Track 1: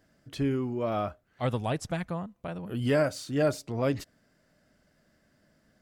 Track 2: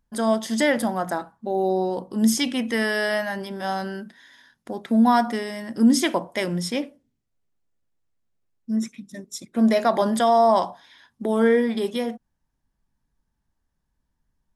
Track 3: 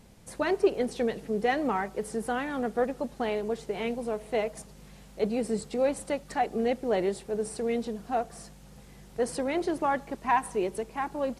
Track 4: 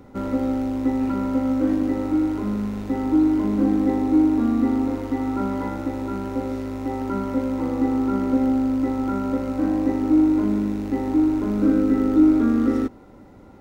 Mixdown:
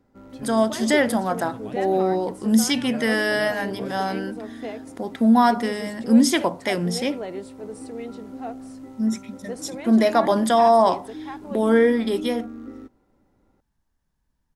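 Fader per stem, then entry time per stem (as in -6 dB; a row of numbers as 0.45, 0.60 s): -11.5, +1.5, -6.0, -18.0 dB; 0.00, 0.30, 0.30, 0.00 s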